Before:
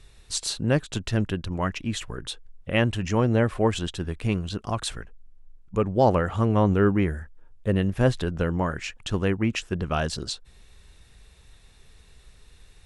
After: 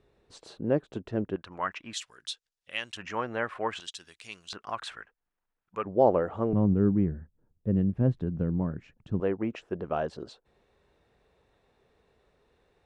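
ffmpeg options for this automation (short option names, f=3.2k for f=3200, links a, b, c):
-af "asetnsamples=n=441:p=0,asendcmd='1.36 bandpass f 1300;1.93 bandpass f 5000;2.97 bandpass f 1400;3.8 bandpass f 5500;4.53 bandpass f 1500;5.85 bandpass f 490;6.53 bandpass f 180;9.2 bandpass f 530',bandpass=f=420:t=q:w=1.1:csg=0"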